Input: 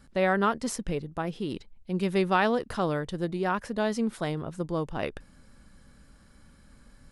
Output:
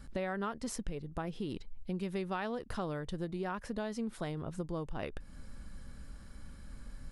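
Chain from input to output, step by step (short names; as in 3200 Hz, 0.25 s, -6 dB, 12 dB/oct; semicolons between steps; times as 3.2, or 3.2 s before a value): low shelf 80 Hz +10 dB; compressor 4:1, threshold -37 dBFS, peak gain reduction 15.5 dB; gain +1 dB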